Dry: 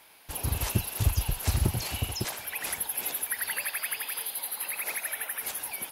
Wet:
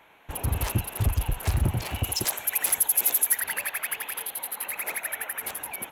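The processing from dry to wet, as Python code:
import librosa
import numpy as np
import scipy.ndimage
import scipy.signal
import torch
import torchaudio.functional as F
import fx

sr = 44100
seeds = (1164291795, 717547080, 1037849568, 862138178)

y = fx.wiener(x, sr, points=9)
y = fx.bass_treble(y, sr, bass_db=-6, treble_db=14, at=(2.04, 3.41))
y = 10.0 ** (-20.0 / 20.0) * np.tanh(y / 10.0 ** (-20.0 / 20.0))
y = F.gain(torch.from_numpy(y), 4.5).numpy()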